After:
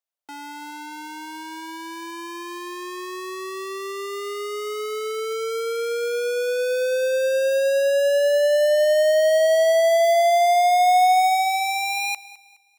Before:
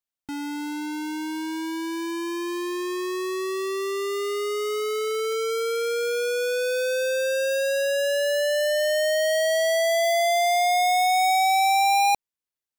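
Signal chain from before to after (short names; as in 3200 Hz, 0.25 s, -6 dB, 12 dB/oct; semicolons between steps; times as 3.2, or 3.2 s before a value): high-pass sweep 580 Hz -> 2400 Hz, 10.76–12.59; thinning echo 0.209 s, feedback 35%, level -18 dB; gain -2 dB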